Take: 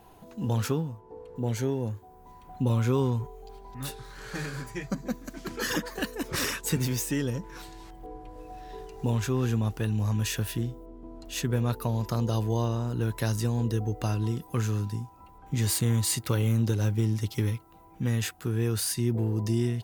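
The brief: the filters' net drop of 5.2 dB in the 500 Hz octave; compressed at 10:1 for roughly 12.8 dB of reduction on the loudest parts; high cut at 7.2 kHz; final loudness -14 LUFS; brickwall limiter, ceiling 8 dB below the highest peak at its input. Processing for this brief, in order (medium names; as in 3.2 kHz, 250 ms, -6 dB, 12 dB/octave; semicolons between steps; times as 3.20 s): low-pass 7.2 kHz; peaking EQ 500 Hz -7 dB; compression 10:1, threshold -35 dBFS; trim +27.5 dB; peak limiter -3.5 dBFS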